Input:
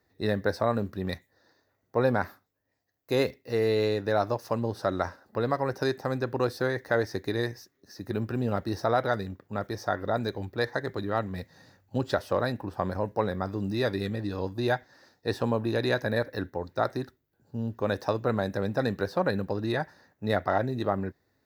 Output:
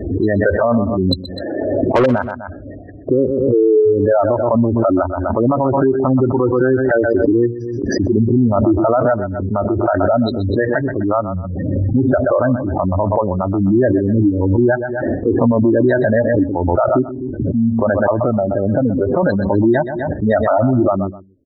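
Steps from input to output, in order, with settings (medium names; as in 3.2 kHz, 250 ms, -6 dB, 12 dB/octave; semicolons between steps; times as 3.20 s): local Wiener filter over 41 samples; spectral noise reduction 8 dB; spectral gate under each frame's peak -15 dB strong; comb 3.2 ms, depth 42%; 1.11–2.06 s: overdrive pedal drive 26 dB, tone 3.6 kHz, clips at -14.5 dBFS; 18.18–19.23 s: compression 2.5:1, threshold -32 dBFS, peak gain reduction 7 dB; feedback delay 126 ms, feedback 22%, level -17.5 dB; loudness maximiser +25 dB; swell ahead of each attack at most 25 dB/s; trim -5.5 dB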